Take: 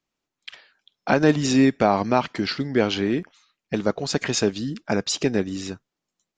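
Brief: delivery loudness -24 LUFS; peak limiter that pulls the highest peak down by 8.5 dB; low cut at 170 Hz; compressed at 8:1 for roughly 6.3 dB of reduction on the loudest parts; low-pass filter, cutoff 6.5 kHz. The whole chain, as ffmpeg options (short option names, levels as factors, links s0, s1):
-af "highpass=170,lowpass=6500,acompressor=threshold=0.112:ratio=8,volume=1.78,alimiter=limit=0.237:level=0:latency=1"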